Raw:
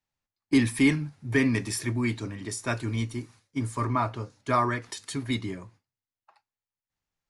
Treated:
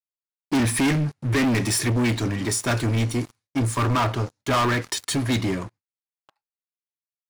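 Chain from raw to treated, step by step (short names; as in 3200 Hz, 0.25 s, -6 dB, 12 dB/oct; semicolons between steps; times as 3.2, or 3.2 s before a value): gate with hold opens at -52 dBFS; sample leveller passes 5; gain -6 dB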